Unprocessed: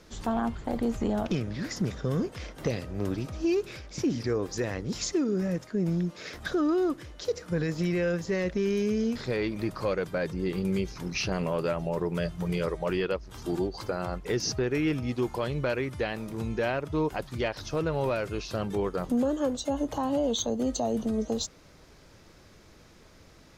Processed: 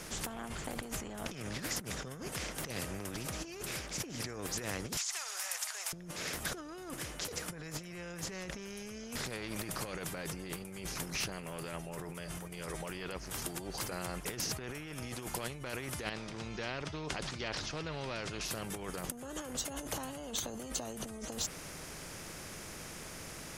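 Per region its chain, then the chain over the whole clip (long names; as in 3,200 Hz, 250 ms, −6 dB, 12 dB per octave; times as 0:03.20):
0:04.97–0:05.93: Butterworth high-pass 770 Hz 48 dB per octave + downward compressor 2 to 1, threshold −47 dBFS + parametric band 7,400 Hz +14 dB 2.2 octaves
0:16.09–0:18.41: transistor ladder low-pass 5,400 Hz, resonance 40% + level that may fall only so fast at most 33 dB per second
whole clip: graphic EQ with 15 bands 160 Hz +7 dB, 1,000 Hz −4 dB, 4,000 Hz −8 dB, 10,000 Hz +9 dB; compressor whose output falls as the input rises −33 dBFS, ratio −1; every bin compressed towards the loudest bin 2 to 1; level −3.5 dB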